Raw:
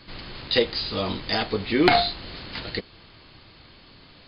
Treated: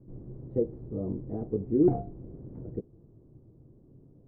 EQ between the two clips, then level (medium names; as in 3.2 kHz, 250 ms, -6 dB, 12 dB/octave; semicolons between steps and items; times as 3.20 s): four-pole ladder low-pass 480 Hz, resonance 35%; peaking EQ 130 Hz +10 dB 0.46 oct; +1.5 dB